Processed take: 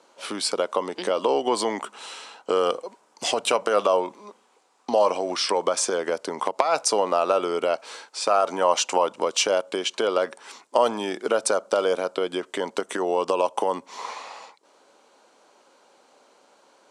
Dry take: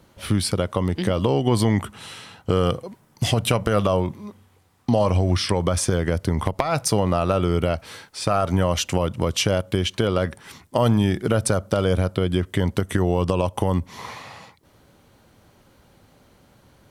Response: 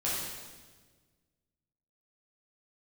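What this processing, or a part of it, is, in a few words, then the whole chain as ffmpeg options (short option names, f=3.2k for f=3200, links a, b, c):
phone speaker on a table: -filter_complex "[0:a]asettb=1/sr,asplit=3[a][b][c];[a]atrim=end=8.614[d];[b]atrim=start=8.61:end=9.15,asetpts=PTS-STARTPTS,afade=t=in:d=0.004:c=qsin,afade=t=out:st=0.536:d=0.004:c=qsin,equalizer=f=900:w=2.3:g=6[e];[c]atrim=start=9.146[f];[d][e]acrossfade=d=0.004:c1=hsin:c2=qsin[g];[g][f]acrossfade=d=0.004:c1=qsin:c2=hsin,highpass=f=340:w=0.5412,highpass=f=340:w=1.3066,equalizer=f=340:t=q:w=4:g=-4,equalizer=f=940:t=q:w=4:g=3,equalizer=f=1.9k:t=q:w=4:g=-6,equalizer=f=3.3k:t=q:w=4:g=-3,equalizer=f=7.3k:t=q:w=4:g=3,lowpass=f=8.7k:w=0.5412,lowpass=f=8.7k:w=1.3066,volume=1.5dB"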